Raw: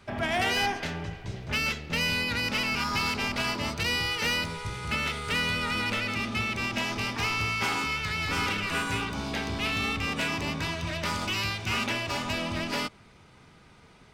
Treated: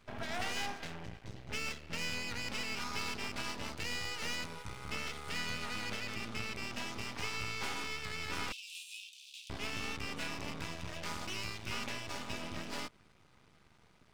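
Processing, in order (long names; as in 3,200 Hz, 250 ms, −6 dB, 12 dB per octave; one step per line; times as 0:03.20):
half-wave rectification
0:08.52–0:09.50: Chebyshev high-pass with heavy ripple 2,500 Hz, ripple 3 dB
level −6.5 dB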